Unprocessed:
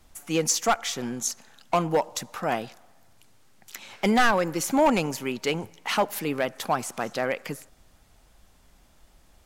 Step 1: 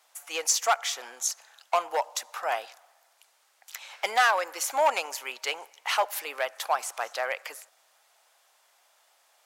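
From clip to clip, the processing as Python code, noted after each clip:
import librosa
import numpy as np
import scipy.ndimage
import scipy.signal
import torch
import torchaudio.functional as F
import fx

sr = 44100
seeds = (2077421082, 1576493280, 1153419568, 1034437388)

y = scipy.signal.sosfilt(scipy.signal.butter(4, 620.0, 'highpass', fs=sr, output='sos'), x)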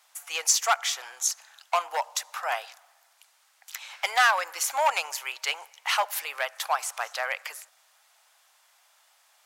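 y = scipy.signal.sosfilt(scipy.signal.butter(2, 810.0, 'highpass', fs=sr, output='sos'), x)
y = y * librosa.db_to_amplitude(2.5)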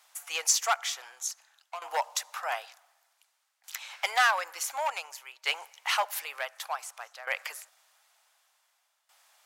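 y = fx.tremolo_shape(x, sr, shape='saw_down', hz=0.55, depth_pct=85)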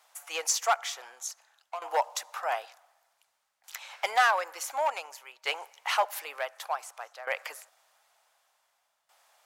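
y = fx.tilt_shelf(x, sr, db=6.5, hz=790.0)
y = y * librosa.db_to_amplitude(3.0)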